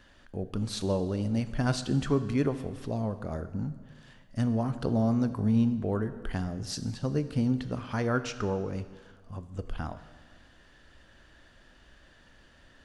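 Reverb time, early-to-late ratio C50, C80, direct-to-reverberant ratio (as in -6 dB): 1.5 s, 13.0 dB, 14.0 dB, 11.0 dB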